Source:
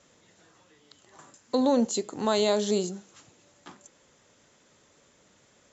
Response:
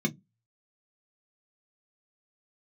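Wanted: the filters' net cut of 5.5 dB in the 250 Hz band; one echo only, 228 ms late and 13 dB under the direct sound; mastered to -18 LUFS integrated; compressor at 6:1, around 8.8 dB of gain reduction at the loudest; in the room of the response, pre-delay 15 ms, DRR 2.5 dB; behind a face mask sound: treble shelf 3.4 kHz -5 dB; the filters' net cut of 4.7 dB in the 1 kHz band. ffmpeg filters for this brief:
-filter_complex "[0:a]equalizer=f=250:t=o:g=-6,equalizer=f=1000:t=o:g=-5,acompressor=threshold=0.0251:ratio=6,aecho=1:1:228:0.224,asplit=2[s0][s1];[1:a]atrim=start_sample=2205,adelay=15[s2];[s1][s2]afir=irnorm=-1:irlink=0,volume=0.355[s3];[s0][s3]amix=inputs=2:normalize=0,highshelf=f=3400:g=-5,volume=3.55"

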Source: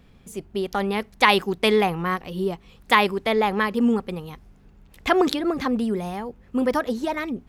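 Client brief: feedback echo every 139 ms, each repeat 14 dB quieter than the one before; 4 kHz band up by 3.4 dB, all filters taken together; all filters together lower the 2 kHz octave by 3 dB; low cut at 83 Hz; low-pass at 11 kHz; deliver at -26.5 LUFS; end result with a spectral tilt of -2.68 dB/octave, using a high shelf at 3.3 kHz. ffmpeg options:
-af "highpass=83,lowpass=11000,equalizer=f=2000:t=o:g=-4.5,highshelf=f=3300:g=-4.5,equalizer=f=4000:t=o:g=9,aecho=1:1:139|278:0.2|0.0399,volume=0.668"

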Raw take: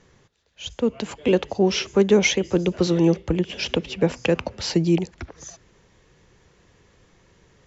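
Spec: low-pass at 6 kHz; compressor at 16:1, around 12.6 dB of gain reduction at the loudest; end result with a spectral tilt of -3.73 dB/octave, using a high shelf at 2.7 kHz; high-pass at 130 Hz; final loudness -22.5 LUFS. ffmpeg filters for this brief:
-af "highpass=130,lowpass=6000,highshelf=f=2700:g=8.5,acompressor=threshold=0.0631:ratio=16,volume=2.37"

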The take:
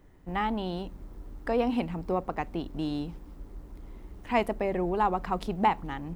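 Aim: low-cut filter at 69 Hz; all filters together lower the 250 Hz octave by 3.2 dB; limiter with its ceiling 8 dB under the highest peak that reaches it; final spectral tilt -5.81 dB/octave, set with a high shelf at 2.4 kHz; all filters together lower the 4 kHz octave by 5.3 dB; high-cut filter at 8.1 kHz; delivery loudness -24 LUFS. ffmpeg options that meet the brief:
-af "highpass=69,lowpass=8100,equalizer=f=250:t=o:g=-4,highshelf=f=2400:g=-4.5,equalizer=f=4000:t=o:g=-3.5,volume=3.35,alimiter=limit=0.251:level=0:latency=1"

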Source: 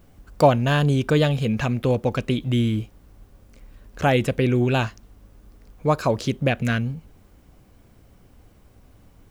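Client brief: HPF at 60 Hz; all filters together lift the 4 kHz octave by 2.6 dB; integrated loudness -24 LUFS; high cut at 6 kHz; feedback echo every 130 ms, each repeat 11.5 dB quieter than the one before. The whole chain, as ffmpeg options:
-af "highpass=60,lowpass=6000,equalizer=f=4000:t=o:g=4,aecho=1:1:130|260|390:0.266|0.0718|0.0194,volume=0.75"

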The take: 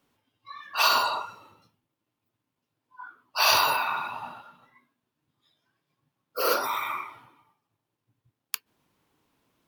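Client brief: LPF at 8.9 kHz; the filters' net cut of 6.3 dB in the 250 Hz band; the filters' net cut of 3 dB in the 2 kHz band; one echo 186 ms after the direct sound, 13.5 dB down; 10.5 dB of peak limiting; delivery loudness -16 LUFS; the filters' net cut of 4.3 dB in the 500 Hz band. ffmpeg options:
-af "lowpass=8900,equalizer=f=250:t=o:g=-7.5,equalizer=f=500:t=o:g=-3.5,equalizer=f=2000:t=o:g=-4.5,alimiter=limit=0.0944:level=0:latency=1,aecho=1:1:186:0.211,volume=6.31"

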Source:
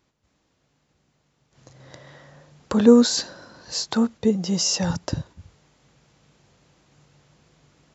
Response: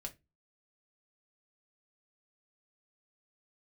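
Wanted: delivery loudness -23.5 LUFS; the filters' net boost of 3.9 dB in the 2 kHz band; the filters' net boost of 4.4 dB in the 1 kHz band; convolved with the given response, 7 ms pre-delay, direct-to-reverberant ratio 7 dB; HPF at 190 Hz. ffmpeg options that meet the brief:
-filter_complex "[0:a]highpass=190,equalizer=f=1000:t=o:g=4.5,equalizer=f=2000:t=o:g=3.5,asplit=2[s0][s1];[1:a]atrim=start_sample=2205,adelay=7[s2];[s1][s2]afir=irnorm=-1:irlink=0,volume=0.631[s3];[s0][s3]amix=inputs=2:normalize=0,volume=0.75"

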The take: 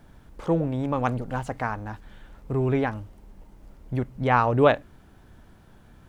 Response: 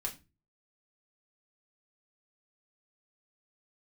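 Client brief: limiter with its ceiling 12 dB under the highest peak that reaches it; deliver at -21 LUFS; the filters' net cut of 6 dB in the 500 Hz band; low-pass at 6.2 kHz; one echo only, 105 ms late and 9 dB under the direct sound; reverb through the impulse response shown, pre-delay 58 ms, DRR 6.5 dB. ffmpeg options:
-filter_complex "[0:a]lowpass=6200,equalizer=f=500:t=o:g=-7.5,alimiter=limit=0.0944:level=0:latency=1,aecho=1:1:105:0.355,asplit=2[s0][s1];[1:a]atrim=start_sample=2205,adelay=58[s2];[s1][s2]afir=irnorm=-1:irlink=0,volume=0.422[s3];[s0][s3]amix=inputs=2:normalize=0,volume=2.99"

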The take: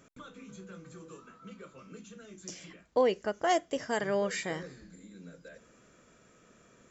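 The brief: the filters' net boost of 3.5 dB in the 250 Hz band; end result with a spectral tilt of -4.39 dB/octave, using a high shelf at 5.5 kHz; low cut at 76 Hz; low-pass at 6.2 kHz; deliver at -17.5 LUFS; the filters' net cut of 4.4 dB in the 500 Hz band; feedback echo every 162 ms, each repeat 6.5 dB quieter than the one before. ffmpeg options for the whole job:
-af "highpass=76,lowpass=6200,equalizer=f=250:t=o:g=6.5,equalizer=f=500:t=o:g=-7,highshelf=f=5500:g=4.5,aecho=1:1:162|324|486|648|810|972:0.473|0.222|0.105|0.0491|0.0231|0.0109,volume=6.68"

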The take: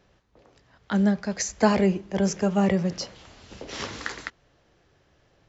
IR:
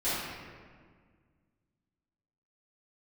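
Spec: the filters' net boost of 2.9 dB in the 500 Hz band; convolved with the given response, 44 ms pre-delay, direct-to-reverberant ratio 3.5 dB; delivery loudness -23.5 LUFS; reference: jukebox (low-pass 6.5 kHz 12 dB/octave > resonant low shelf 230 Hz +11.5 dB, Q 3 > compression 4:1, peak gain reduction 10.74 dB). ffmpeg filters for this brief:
-filter_complex "[0:a]equalizer=f=500:t=o:g=8.5,asplit=2[s0][s1];[1:a]atrim=start_sample=2205,adelay=44[s2];[s1][s2]afir=irnorm=-1:irlink=0,volume=0.211[s3];[s0][s3]amix=inputs=2:normalize=0,lowpass=6500,lowshelf=f=230:t=q:w=3:g=11.5,acompressor=threshold=0.2:ratio=4,volume=0.531"

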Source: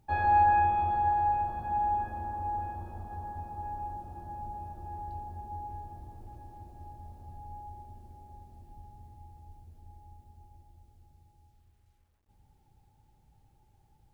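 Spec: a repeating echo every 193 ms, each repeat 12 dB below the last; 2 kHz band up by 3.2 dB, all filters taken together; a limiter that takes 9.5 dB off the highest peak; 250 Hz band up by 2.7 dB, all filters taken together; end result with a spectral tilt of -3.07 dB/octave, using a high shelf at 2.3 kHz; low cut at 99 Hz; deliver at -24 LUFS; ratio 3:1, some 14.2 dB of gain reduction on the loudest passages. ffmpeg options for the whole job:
-af "highpass=99,equalizer=f=250:t=o:g=4,equalizer=f=2000:t=o:g=7,highshelf=f=2300:g=-6.5,acompressor=threshold=0.01:ratio=3,alimiter=level_in=5.62:limit=0.0631:level=0:latency=1,volume=0.178,aecho=1:1:193|386|579:0.251|0.0628|0.0157,volume=15"

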